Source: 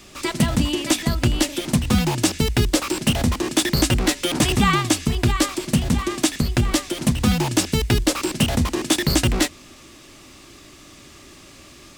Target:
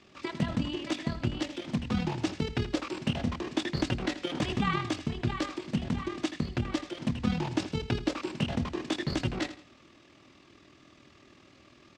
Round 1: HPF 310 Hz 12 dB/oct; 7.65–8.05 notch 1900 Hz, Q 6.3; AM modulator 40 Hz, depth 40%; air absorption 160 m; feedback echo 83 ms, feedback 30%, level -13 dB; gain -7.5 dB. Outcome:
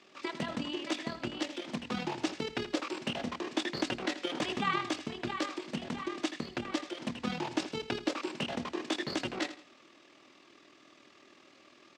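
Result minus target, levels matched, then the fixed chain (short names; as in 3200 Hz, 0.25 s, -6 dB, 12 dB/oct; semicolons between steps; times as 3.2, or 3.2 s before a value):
125 Hz band -10.0 dB
HPF 83 Hz 12 dB/oct; 7.65–8.05 notch 1900 Hz, Q 6.3; AM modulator 40 Hz, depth 40%; air absorption 160 m; feedback echo 83 ms, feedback 30%, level -13 dB; gain -7.5 dB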